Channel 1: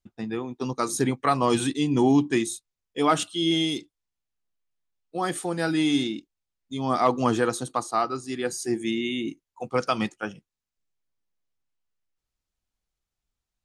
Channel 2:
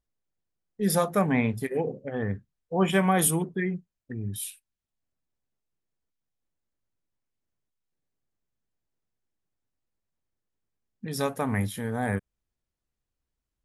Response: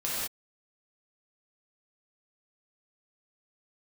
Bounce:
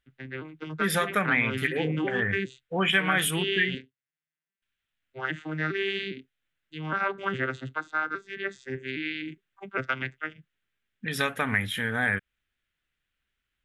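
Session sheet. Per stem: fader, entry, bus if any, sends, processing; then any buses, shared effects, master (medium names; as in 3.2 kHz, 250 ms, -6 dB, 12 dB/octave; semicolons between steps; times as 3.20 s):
-8.0 dB, 0.00 s, no send, vocoder on a broken chord minor triad, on C3, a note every 407 ms; peaking EQ 1.9 kHz +5.5 dB 0.59 oct
-1.0 dB, 0.00 s, muted 3.75–4.62 s, no send, none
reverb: none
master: high-order bell 2.2 kHz +15.5 dB; compression 2.5:1, threshold -23 dBFS, peak gain reduction 8.5 dB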